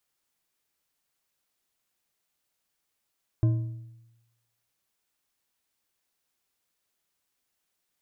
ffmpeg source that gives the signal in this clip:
-f lavfi -i "aevalsrc='0.141*pow(10,-3*t/0.99)*sin(2*PI*116*t)+0.0398*pow(10,-3*t/0.73)*sin(2*PI*319.8*t)+0.0112*pow(10,-3*t/0.597)*sin(2*PI*626.9*t)+0.00316*pow(10,-3*t/0.513)*sin(2*PI*1036.2*t)+0.000891*pow(10,-3*t/0.455)*sin(2*PI*1547.4*t)':d=1.55:s=44100"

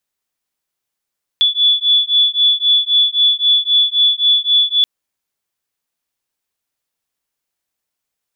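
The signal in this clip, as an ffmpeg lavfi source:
-f lavfi -i "aevalsrc='0.211*(sin(2*PI*3440*t)+sin(2*PI*3443.8*t))':d=3.43:s=44100"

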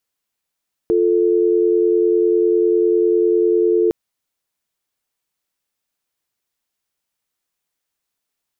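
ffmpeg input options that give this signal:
-f lavfi -i "aevalsrc='0.178*(sin(2*PI*350*t)+sin(2*PI*440*t))':d=3.01:s=44100"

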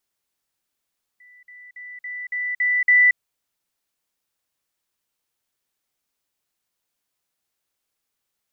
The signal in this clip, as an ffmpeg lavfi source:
-f lavfi -i "aevalsrc='pow(10,(-47+6*floor(t/0.28))/20)*sin(2*PI*1980*t)*clip(min(mod(t,0.28),0.23-mod(t,0.28))/0.005,0,1)':d=1.96:s=44100"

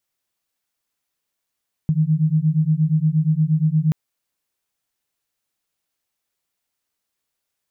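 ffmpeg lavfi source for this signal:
-f lavfi -i "aevalsrc='0.126*(sin(2*PI*152*t)+sin(2*PI*160.5*t))':d=2.03:s=44100"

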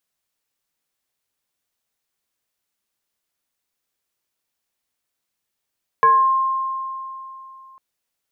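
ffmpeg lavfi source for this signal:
-f lavfi -i "aevalsrc='0.355*pow(10,-3*t/3.03)*sin(2*PI*1060*t+0.6*pow(10,-3*t/0.5)*sin(2*PI*0.57*1060*t))':d=1.75:s=44100"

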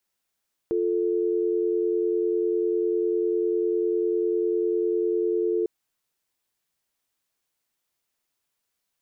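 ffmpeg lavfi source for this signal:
-f lavfi -i "aevalsrc='0.0631*(sin(2*PI*350*t)+sin(2*PI*440*t))':d=4.95:s=44100"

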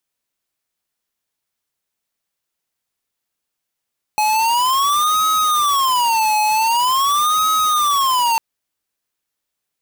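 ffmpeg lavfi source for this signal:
-f lavfi -i "aevalsrc='0.158*(2*lt(mod((1060*t-210/(2*PI*0.45)*sin(2*PI*0.45*t)),1),0.5)-1)':d=4.2:s=44100"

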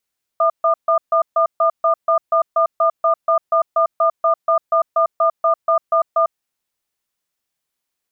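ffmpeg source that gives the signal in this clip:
-f lavfi -i "aevalsrc='0.188*(sin(2*PI*660*t)+sin(2*PI*1210*t))*clip(min(mod(t,0.24),0.1-mod(t,0.24))/0.005,0,1)':d=5.9:s=44100"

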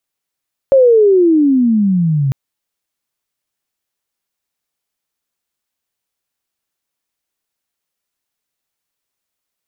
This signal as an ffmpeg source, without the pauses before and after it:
-f lavfi -i "aevalsrc='pow(10,(-4.5-7*t/1.6)/20)*sin(2*PI*555*1.6/(-25*log(2)/12)*(exp(-25*log(2)/12*t/1.6)-1))':d=1.6:s=44100"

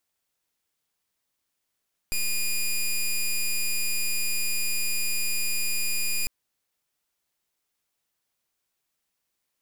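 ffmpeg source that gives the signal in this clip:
-f lavfi -i "aevalsrc='0.0562*(2*lt(mod(2440*t,1),0.1)-1)':d=4.15:s=44100"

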